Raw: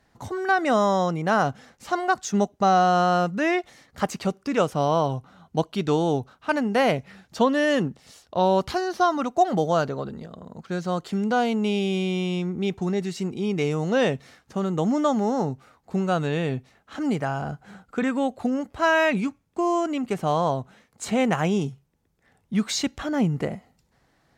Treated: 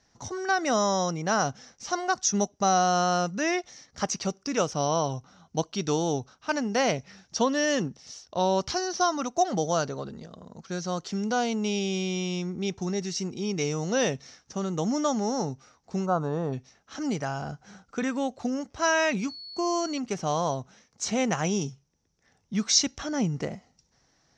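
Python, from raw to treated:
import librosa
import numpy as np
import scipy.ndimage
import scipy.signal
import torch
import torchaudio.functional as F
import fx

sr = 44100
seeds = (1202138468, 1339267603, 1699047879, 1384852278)

y = fx.lowpass_res(x, sr, hz=5800.0, q=8.5)
y = fx.high_shelf_res(y, sr, hz=1600.0, db=-13.5, q=3.0, at=(16.05, 16.52), fade=0.02)
y = fx.dmg_tone(y, sr, hz=4400.0, level_db=-35.0, at=(19.28, 19.98), fade=0.02)
y = y * 10.0 ** (-4.5 / 20.0)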